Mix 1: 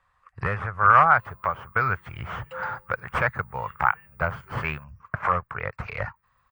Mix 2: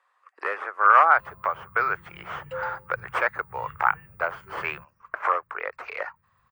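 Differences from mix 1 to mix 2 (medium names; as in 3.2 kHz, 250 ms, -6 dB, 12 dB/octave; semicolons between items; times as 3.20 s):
speech: add steep high-pass 310 Hz 48 dB/octave; background: add bass shelf 500 Hz +11 dB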